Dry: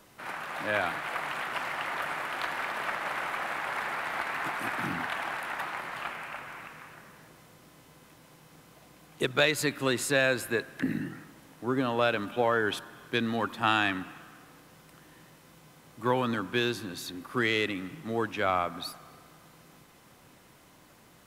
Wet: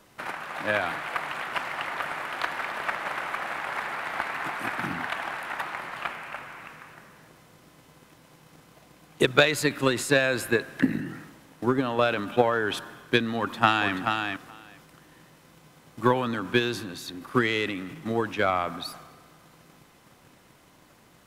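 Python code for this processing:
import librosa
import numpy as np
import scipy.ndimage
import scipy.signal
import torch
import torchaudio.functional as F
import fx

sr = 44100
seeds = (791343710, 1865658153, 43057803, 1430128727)

y = fx.echo_throw(x, sr, start_s=13.38, length_s=0.55, ms=430, feedback_pct=10, wet_db=-4.5)
y = fx.high_shelf(y, sr, hz=10000.0, db=-4.0)
y = fx.transient(y, sr, attack_db=9, sustain_db=5)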